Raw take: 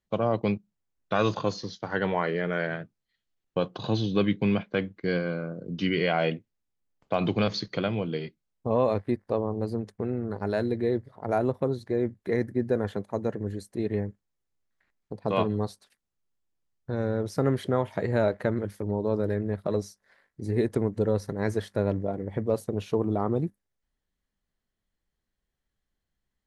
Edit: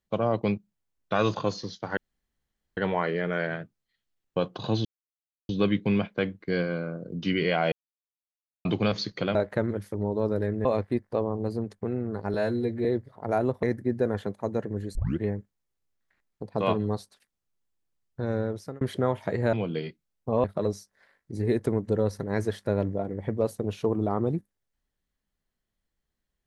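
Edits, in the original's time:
1.97 insert room tone 0.80 s
4.05 insert silence 0.64 s
6.28–7.21 mute
7.91–8.82 swap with 18.23–19.53
10.51–10.85 stretch 1.5×
11.63–12.33 cut
13.65 tape start 0.26 s
17.1–17.51 fade out

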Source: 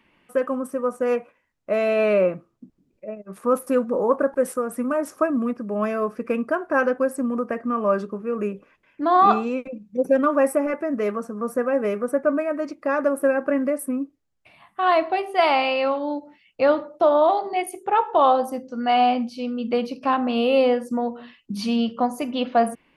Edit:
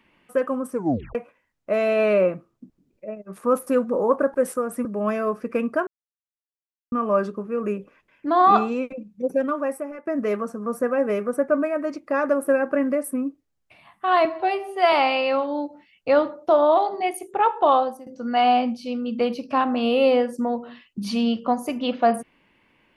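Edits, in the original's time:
0.72 tape stop 0.43 s
4.85–5.6 cut
6.62–7.67 mute
9.63–10.82 fade out, to -16 dB
15–15.45 stretch 1.5×
18.21–18.59 fade out, to -18.5 dB

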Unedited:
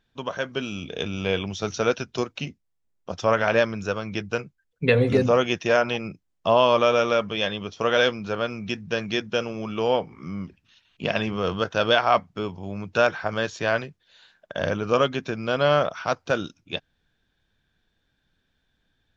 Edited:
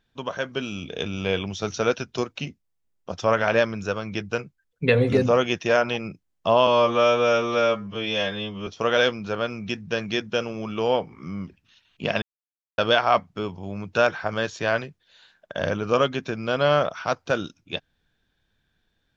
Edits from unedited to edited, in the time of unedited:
6.67–7.67 stretch 2×
11.22–11.78 mute

